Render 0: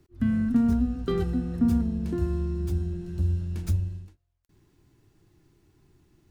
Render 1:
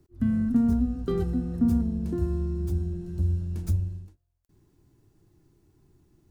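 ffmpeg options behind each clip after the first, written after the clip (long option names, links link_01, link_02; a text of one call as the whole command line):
ffmpeg -i in.wav -af "equalizer=frequency=2500:width=0.58:gain=-7.5" out.wav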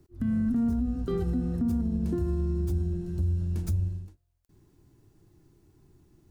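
ffmpeg -i in.wav -af "alimiter=limit=-22.5dB:level=0:latency=1:release=70,volume=2dB" out.wav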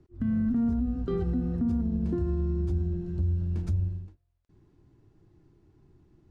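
ffmpeg -i in.wav -af "adynamicsmooth=sensitivity=3:basefreq=4100" out.wav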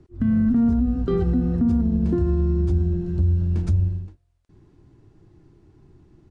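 ffmpeg -i in.wav -af "aresample=22050,aresample=44100,volume=7.5dB" out.wav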